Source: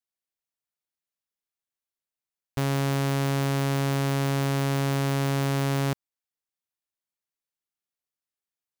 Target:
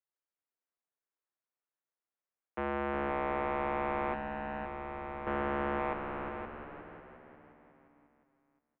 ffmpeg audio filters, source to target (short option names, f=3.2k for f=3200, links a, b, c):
-filter_complex "[0:a]highpass=f=230:t=q:w=0.5412,highpass=f=230:t=q:w=1.307,lowpass=f=3.1k:t=q:w=0.5176,lowpass=f=3.1k:t=q:w=0.7071,lowpass=f=3.1k:t=q:w=1.932,afreqshift=-200,asplit=2[a][b];[b]asplit=6[c][d][e][f][g][h];[c]adelay=356,afreqshift=-61,volume=-8dB[i];[d]adelay=712,afreqshift=-122,volume=-13.4dB[j];[e]adelay=1068,afreqshift=-183,volume=-18.7dB[k];[f]adelay=1424,afreqshift=-244,volume=-24.1dB[l];[g]adelay=1780,afreqshift=-305,volume=-29.4dB[m];[h]adelay=2136,afreqshift=-366,volume=-34.8dB[n];[i][j][k][l][m][n]amix=inputs=6:normalize=0[o];[a][o]amix=inputs=2:normalize=0,asettb=1/sr,asplit=3[p][q][r];[p]atrim=end=4.134[s];[q]atrim=start=4.13:end=5.27,asetpts=PTS-STARTPTS,afade=t=in:d=0.004:c=qsin,afade=t=out:st=1.136:d=0.004:c=qsin,acrossover=split=170|1800[t][u][v];[t]acompressor=threshold=-34dB:ratio=4[w];[u]acompressor=threshold=-39dB:ratio=4[x];[v]acompressor=threshold=-48dB:ratio=4[y];[w][x][y]amix=inputs=3:normalize=0[z];[r]atrim=start=5.266[aa];[s][z]acrossfade=d=0.004:c1=hsin:c2=qsin[ab];[ab][aa]acrossfade=d=0.004:c1=qsin:c2=hsin,acrossover=split=260 2100:gain=0.2 1 0.126[ac][ad][ae];[ac][ad][ae]amix=inputs=3:normalize=0,asplit=2[af][ag];[ag]aecho=0:1:521|1042|1563:0.422|0.0801|0.0152[ah];[af][ah]amix=inputs=2:normalize=0"